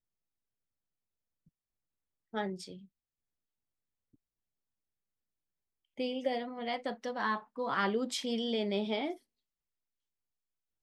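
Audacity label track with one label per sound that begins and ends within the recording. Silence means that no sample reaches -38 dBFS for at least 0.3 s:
2.340000	2.720000	sound
5.990000	9.140000	sound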